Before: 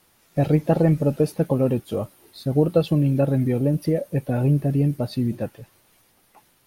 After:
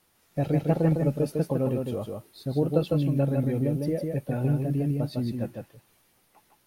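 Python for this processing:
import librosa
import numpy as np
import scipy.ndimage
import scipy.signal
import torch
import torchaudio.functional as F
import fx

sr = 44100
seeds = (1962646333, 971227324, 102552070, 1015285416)

y = x + 10.0 ** (-4.0 / 20.0) * np.pad(x, (int(154 * sr / 1000.0), 0))[:len(x)]
y = y * 10.0 ** (-6.5 / 20.0)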